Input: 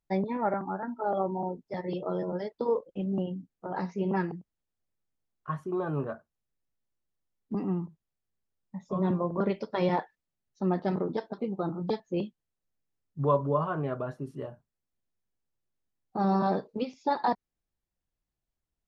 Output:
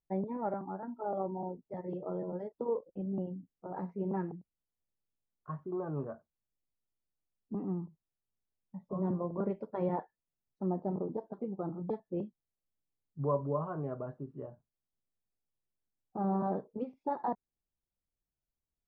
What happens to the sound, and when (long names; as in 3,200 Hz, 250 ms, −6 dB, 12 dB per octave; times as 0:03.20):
0:10.66–0:11.27: flat-topped bell 2,200 Hz −10.5 dB
whole clip: low-pass filter 1,000 Hz 12 dB per octave; level −5.5 dB